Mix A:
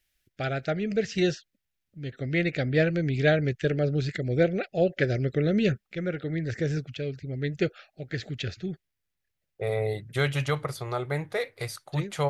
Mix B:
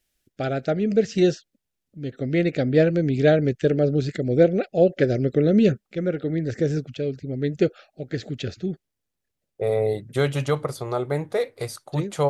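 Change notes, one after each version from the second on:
master: add ten-band graphic EQ 250 Hz +8 dB, 500 Hz +5 dB, 1 kHz +3 dB, 2 kHz -4 dB, 8 kHz +4 dB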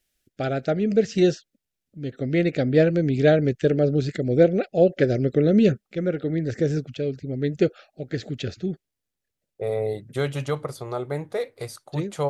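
second voice -3.5 dB

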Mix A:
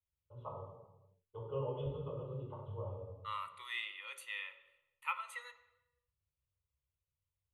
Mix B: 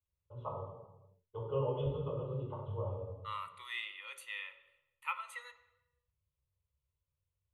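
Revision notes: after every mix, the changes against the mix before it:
first voice +4.5 dB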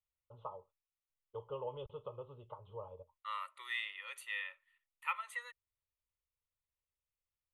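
second voice: add peaking EQ 1.8 kHz +7 dB 0.23 oct; reverb: off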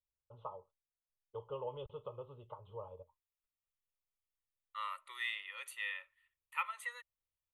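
second voice: entry +1.50 s; master: add treble shelf 11 kHz +6 dB

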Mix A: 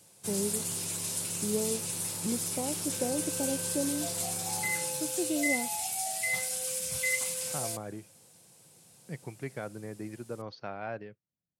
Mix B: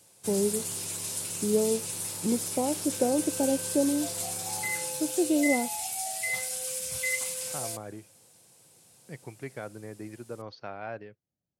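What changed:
first voice +7.5 dB; master: add peaking EQ 170 Hz -5 dB 0.68 oct

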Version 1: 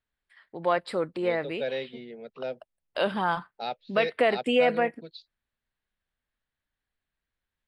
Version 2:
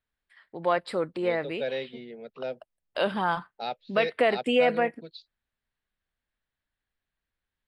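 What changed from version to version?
no change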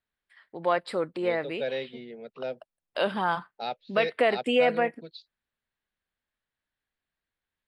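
first voice: add bass shelf 93 Hz -8.5 dB

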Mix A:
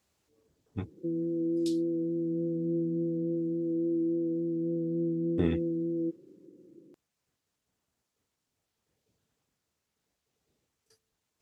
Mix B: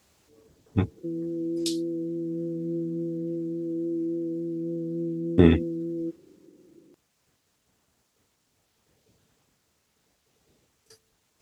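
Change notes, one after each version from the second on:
speech +12.0 dB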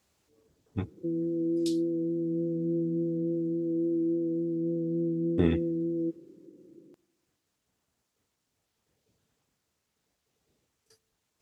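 speech -9.0 dB; reverb: on, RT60 1.4 s

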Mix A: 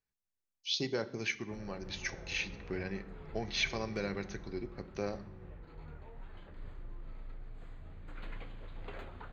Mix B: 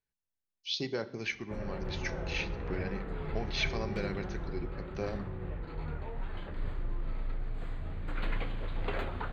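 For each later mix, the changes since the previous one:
background +11.0 dB; master: add peaking EQ 6.5 kHz -5.5 dB 0.46 oct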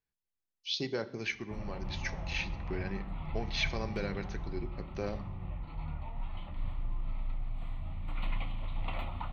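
background: add static phaser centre 1.6 kHz, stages 6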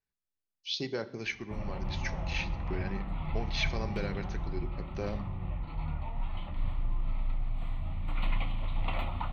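background +4.0 dB

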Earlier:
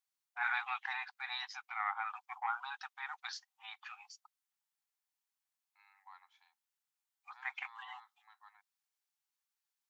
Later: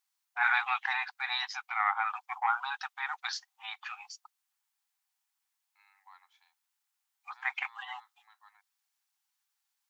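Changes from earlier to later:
first voice +8.0 dB; second voice: add tilt EQ +1.5 dB/octave

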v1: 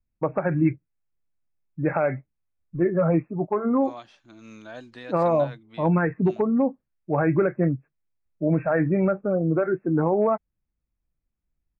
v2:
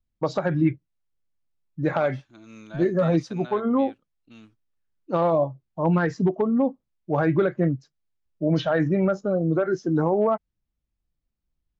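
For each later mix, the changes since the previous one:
first voice: remove brick-wall FIR low-pass 2.7 kHz; second voice: entry -1.95 s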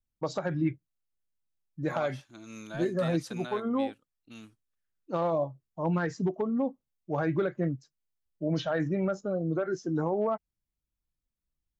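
first voice -7.5 dB; master: remove distance through air 110 m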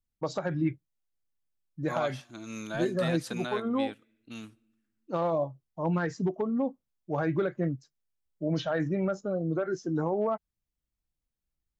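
second voice +4.0 dB; reverb: on, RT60 1.1 s

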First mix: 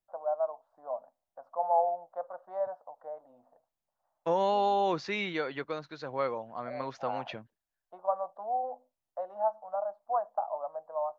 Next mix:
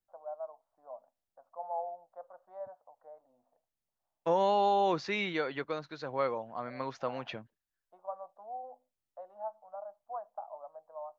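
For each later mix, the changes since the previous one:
first voice -10.5 dB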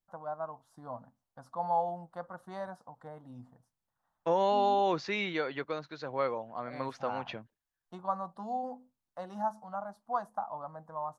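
first voice: remove ladder band-pass 670 Hz, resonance 65%

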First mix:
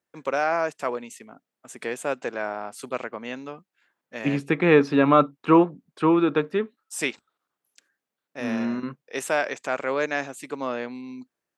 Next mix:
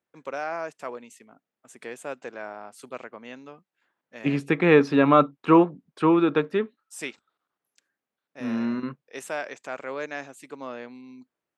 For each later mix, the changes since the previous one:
first voice -7.5 dB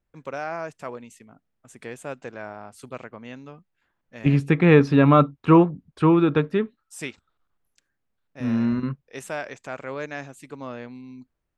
master: remove high-pass 270 Hz 12 dB/octave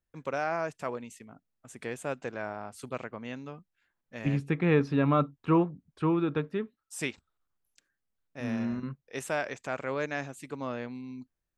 second voice -9.5 dB

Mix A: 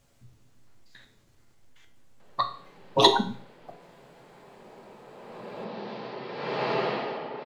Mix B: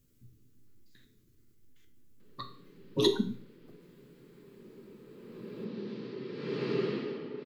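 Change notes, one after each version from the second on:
speech -3.0 dB; master: add FFT filter 130 Hz 0 dB, 290 Hz +3 dB, 420 Hz 0 dB, 720 Hz -27 dB, 1.2 kHz -12 dB, 8.8 kHz -4 dB, 14 kHz +7 dB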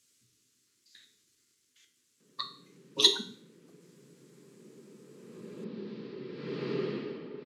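speech: add frequency weighting ITU-R 468; background: send off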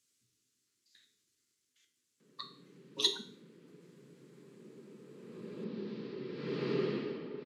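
speech -8.0 dB

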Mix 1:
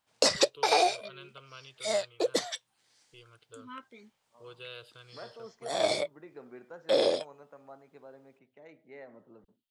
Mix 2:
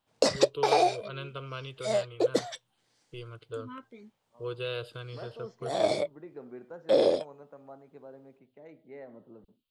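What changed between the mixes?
first voice +10.5 dB; master: add tilt shelf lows +5.5 dB, about 910 Hz

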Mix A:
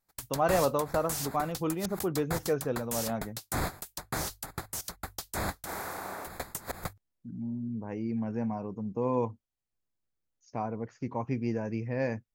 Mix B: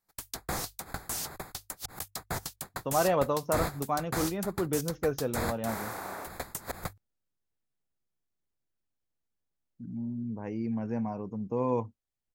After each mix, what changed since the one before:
speech: entry +2.55 s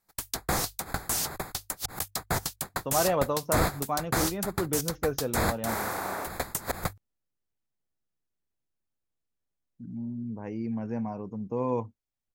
background +6.0 dB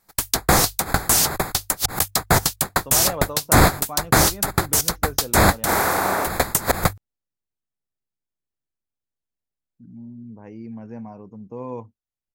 speech -3.5 dB; background +12.0 dB

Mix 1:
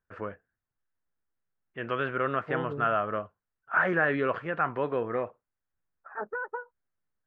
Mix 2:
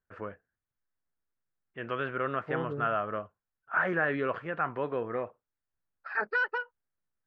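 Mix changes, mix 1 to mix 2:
first voice -3.0 dB; second voice: remove low-pass 1.2 kHz 24 dB/octave

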